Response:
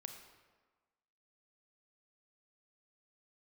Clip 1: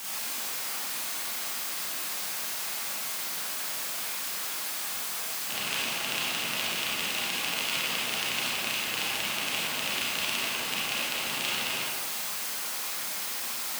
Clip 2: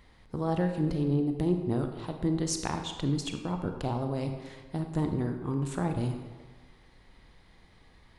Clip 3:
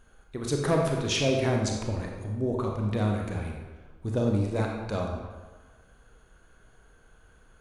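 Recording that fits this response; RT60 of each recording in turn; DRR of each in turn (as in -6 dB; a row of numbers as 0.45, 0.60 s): 2; 1.4, 1.4, 1.4 s; -7.0, 5.0, 0.5 dB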